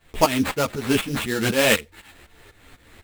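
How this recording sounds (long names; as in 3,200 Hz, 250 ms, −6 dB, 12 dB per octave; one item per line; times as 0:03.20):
aliases and images of a low sample rate 5,700 Hz, jitter 20%
tremolo saw up 4 Hz, depth 85%
a shimmering, thickened sound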